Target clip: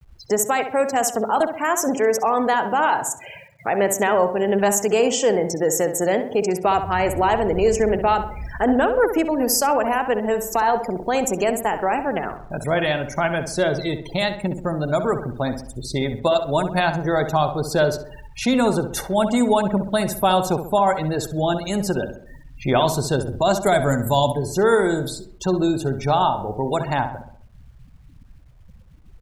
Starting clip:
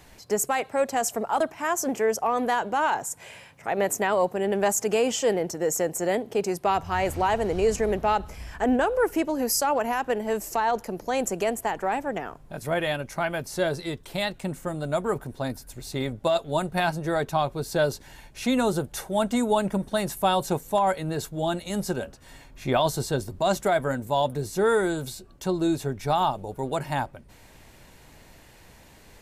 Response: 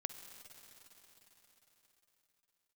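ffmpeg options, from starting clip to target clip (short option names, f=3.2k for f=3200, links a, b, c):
-filter_complex "[0:a]asettb=1/sr,asplit=3[a][b][c];[a]atrim=end=23.664[d];[b]atrim=start=23.66:end=24.32,asetpts=PTS-STARTPTS,afade=t=in:d=0.004:c=qsin,afade=t=out:st=0.656:d=0.004:c=qsin,bass=f=250:g=6,treble=f=4k:g=11[e];[c]atrim=start=24.316[f];[d][e]acrossfade=d=0.004:c1=hsin:c2=qsin[g];[g][f]acrossfade=d=0.004:c1=qsin:c2=hsin,afftfilt=real='re*gte(hypot(re,im),0.0126)':imag='im*gte(hypot(re,im),0.0126)':win_size=1024:overlap=0.75,asplit=2[h][i];[i]acompressor=threshold=-31dB:ratio=8,volume=-0.5dB[j];[h][j]amix=inputs=2:normalize=0,acrusher=bits=10:mix=0:aa=0.000001,asplit=2[k][l];[l]adelay=65,lowpass=f=2.1k:p=1,volume=-8.5dB,asplit=2[m][n];[n]adelay=65,lowpass=f=2.1k:p=1,volume=0.5,asplit=2[o][p];[p]adelay=65,lowpass=f=2.1k:p=1,volume=0.5,asplit=2[q][r];[r]adelay=65,lowpass=f=2.1k:p=1,volume=0.5,asplit=2[s][t];[t]adelay=65,lowpass=f=2.1k:p=1,volume=0.5,asplit=2[u][v];[v]adelay=65,lowpass=f=2.1k:p=1,volume=0.5[w];[k][m][o][q][s][u][w]amix=inputs=7:normalize=0,volume=2.5dB"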